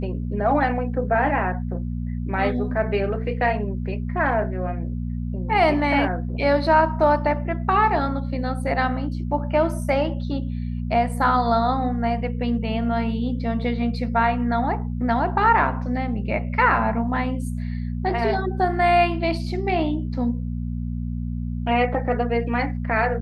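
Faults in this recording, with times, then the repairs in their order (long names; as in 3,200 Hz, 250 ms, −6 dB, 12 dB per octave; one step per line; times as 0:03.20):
mains hum 60 Hz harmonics 4 −27 dBFS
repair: hum removal 60 Hz, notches 4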